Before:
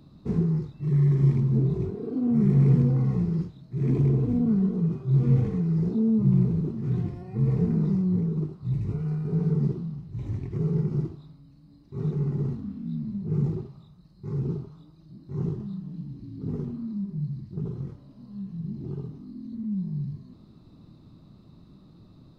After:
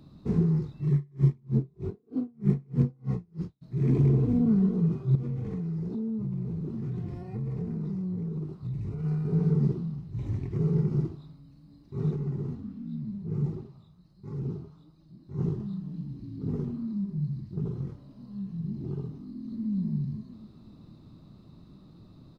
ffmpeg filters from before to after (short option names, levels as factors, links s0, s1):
-filter_complex "[0:a]asplit=3[s0][s1][s2];[s0]afade=t=out:st=0.93:d=0.02[s3];[s1]aeval=exprs='val(0)*pow(10,-38*(0.5-0.5*cos(2*PI*3.2*n/s))/20)':c=same,afade=t=in:st=0.93:d=0.02,afade=t=out:st=3.61:d=0.02[s4];[s2]afade=t=in:st=3.61:d=0.02[s5];[s3][s4][s5]amix=inputs=3:normalize=0,asettb=1/sr,asplit=3[s6][s7][s8];[s6]atrim=end=5.154[s9];[s7]atrim=start=5.15:end=9.04,asetpts=PTS-STARTPTS,afade=t=in:d=0.004:c=qsin,afade=t=out:st=3.886:d=0.004:c=qsin,acompressor=threshold=0.0316:ratio=5:attack=3.2:release=140:knee=1:detection=peak[s10];[s8]atrim=start=9.036[s11];[s9][s10]acrossfade=d=0.004:c1=hsin:c2=qsin[s12];[s12][s11]acrossfade=d=0.004:c1=qsin:c2=hsin,asettb=1/sr,asplit=3[s13][s14][s15];[s13]atrim=end=12.164[s16];[s14]atrim=start=12.16:end=15.39,asetpts=PTS-STARTPTS,afade=t=in:d=0.004:c=qsin,afade=t=out:st=3.226:d=0.004:c=qsin,flanger=delay=3.5:depth=8.7:regen=56:speed=1.4:shape=sinusoidal[s17];[s15]atrim=start=15.386[s18];[s16][s17]acrossfade=d=0.004:c1=hsin:c2=qsin[s19];[s19][s18]acrossfade=d=0.004:c1=qsin:c2=hsin,asplit=2[s20][s21];[s21]afade=t=in:st=19.22:d=0.01,afade=t=out:st=19.71:d=0.01,aecho=0:1:250|500|750|1000|1250|1500:0.707946|0.318576|0.143359|0.0645116|0.0290302|0.0130636[s22];[s20][s22]amix=inputs=2:normalize=0"